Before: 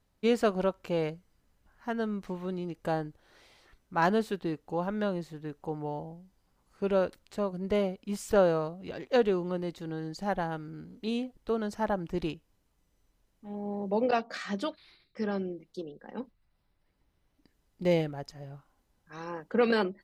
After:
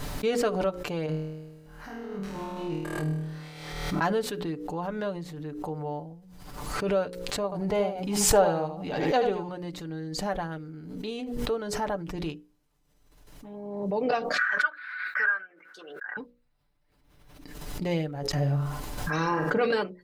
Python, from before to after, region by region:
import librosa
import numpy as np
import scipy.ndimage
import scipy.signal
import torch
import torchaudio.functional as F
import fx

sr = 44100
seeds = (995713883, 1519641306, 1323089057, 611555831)

y = fx.chain(x, sr, fx.over_compress(threshold_db=-37.0, ratio=-0.5),
    fx.room_flutter(wall_m=4.4, rt60_s=1.3), at=(1.06, 4.01))
y = fx.chain(y, sr, fx.peak_eq(hz=810.0, db=13.0, octaves=0.26),
    fx.echo_single(ms=78, db=-7.5), at=(7.44, 9.49))
y = fx.chain(y, sr, fx.highpass_res(hz=1500.0, q=13.0),
    fx.high_shelf_res(hz=2600.0, db=-13.5, q=1.5), at=(14.38, 16.17))
y = fx.chain(y, sr, fx.room_flutter(wall_m=8.5, rt60_s=0.33),
    fx.env_flatten(amount_pct=70), at=(18.33, 19.66))
y = fx.hum_notches(y, sr, base_hz=60, count=9)
y = y + 0.5 * np.pad(y, (int(6.8 * sr / 1000.0), 0))[:len(y)]
y = fx.pre_swell(y, sr, db_per_s=42.0)
y = y * librosa.db_to_amplitude(-1.5)